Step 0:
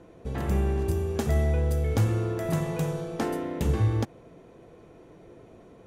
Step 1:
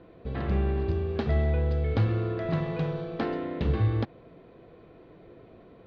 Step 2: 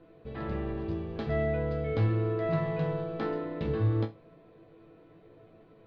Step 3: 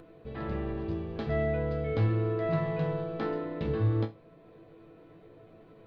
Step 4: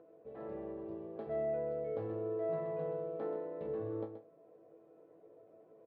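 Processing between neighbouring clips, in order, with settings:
elliptic low-pass 4300 Hz, stop band 70 dB; notch 870 Hz, Q 16
resonator bank A2 sus4, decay 0.22 s; gain +7 dB
upward compressor, threshold -48 dBFS
band-pass 550 Hz, Q 2; echo 0.128 s -9.5 dB; gain -2.5 dB

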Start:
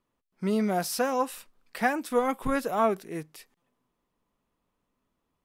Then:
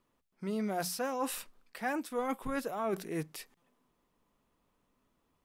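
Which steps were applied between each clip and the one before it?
notches 60/120/180 Hz; reverse; compressor 6:1, threshold -35 dBFS, peak gain reduction 15 dB; reverse; gain +3 dB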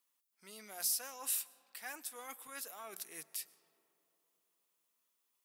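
differentiator; digital reverb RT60 3.4 s, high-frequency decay 0.35×, pre-delay 75 ms, DRR 19.5 dB; gain +4 dB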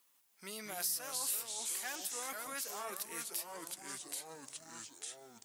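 echoes that change speed 0.145 s, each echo -3 st, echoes 3, each echo -6 dB; compressor 2:1, threshold -52 dBFS, peak gain reduction 12 dB; gain +9.5 dB

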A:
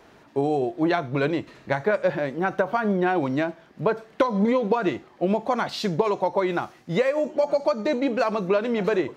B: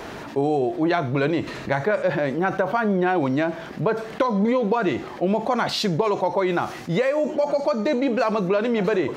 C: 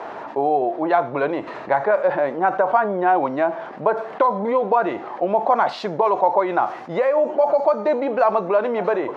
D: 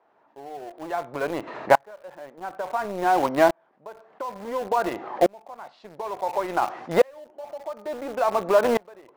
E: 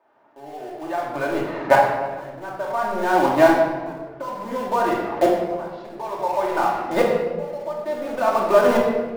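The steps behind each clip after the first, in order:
fast leveller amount 50%; gain -1.5 dB
band-pass 830 Hz, Q 1.6; gain +8 dB
in parallel at -4 dB: sample gate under -19.5 dBFS; on the sum: dB-ramp tremolo swelling 0.57 Hz, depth 33 dB
shoebox room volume 1100 m³, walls mixed, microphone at 2.6 m; gain -1 dB

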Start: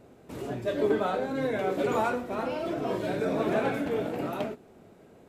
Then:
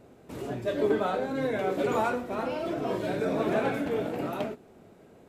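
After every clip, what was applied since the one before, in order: nothing audible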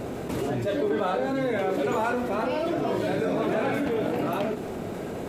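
fast leveller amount 70%; gain -2 dB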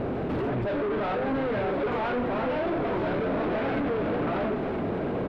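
hard clip -31 dBFS, distortion -6 dB; air absorption 380 m; echo 1.009 s -9.5 dB; gain +6 dB

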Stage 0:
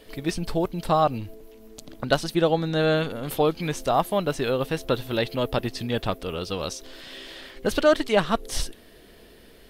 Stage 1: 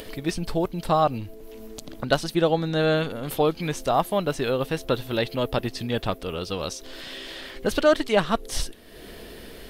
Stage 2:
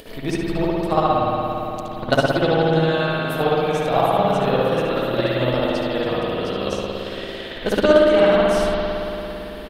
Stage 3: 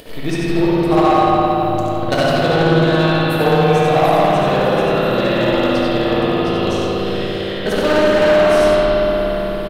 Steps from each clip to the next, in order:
upward compressor, threshold -31 dBFS
echo 71 ms -8.5 dB; spring tank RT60 3.5 s, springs 56 ms, chirp 25 ms, DRR -8.5 dB; transient shaper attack +8 dB, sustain 0 dB; gain -5 dB
echo 92 ms -5 dB; hard clip -13.5 dBFS, distortion -13 dB; shoebox room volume 190 m³, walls hard, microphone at 0.46 m; gain +2 dB

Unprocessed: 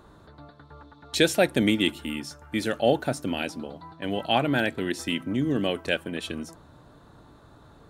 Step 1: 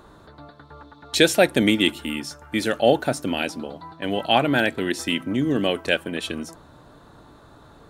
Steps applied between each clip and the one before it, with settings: bell 92 Hz -4 dB 2.7 oct; gain +5 dB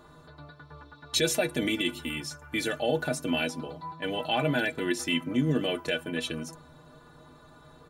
comb 6.8 ms, depth 42%; limiter -11 dBFS, peak gain reduction 10 dB; metallic resonator 73 Hz, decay 0.22 s, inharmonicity 0.03; gain +2.5 dB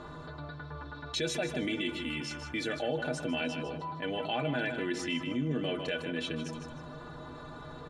air absorption 96 m; on a send: feedback echo 0.154 s, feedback 27%, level -11 dB; on the sum: fast leveller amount 50%; gain -7.5 dB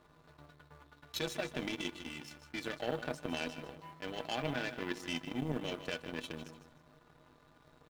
in parallel at -9 dB: bit-crush 8-bit; on the sum: power-law curve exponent 2; gain -1 dB

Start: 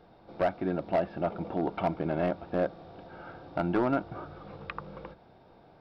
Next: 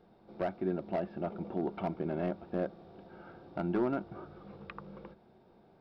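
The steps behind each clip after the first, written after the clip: small resonant body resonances 210/370 Hz, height 9 dB, ringing for 50 ms; gain -8 dB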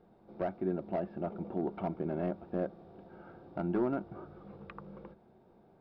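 high shelf 2400 Hz -10 dB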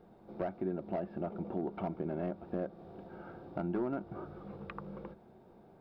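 compressor 2:1, threshold -40 dBFS, peak gain reduction 8 dB; gain +3.5 dB

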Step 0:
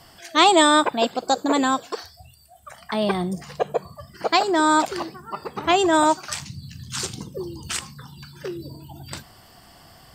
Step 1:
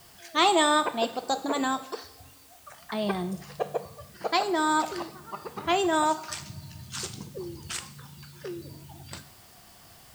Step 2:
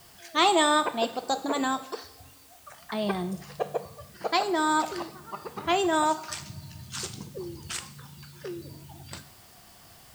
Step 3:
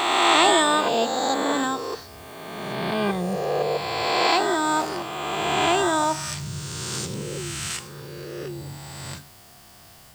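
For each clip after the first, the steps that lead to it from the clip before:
in parallel at -11 dB: requantised 6-bit, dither triangular; on the sum: two-slope reverb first 0.62 s, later 3.1 s, from -21 dB, DRR 10 dB; gain -9 dB
nothing audible
spectral swells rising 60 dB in 2.39 s; dynamic EQ 140 Hz, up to +7 dB, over -48 dBFS, Q 1.7

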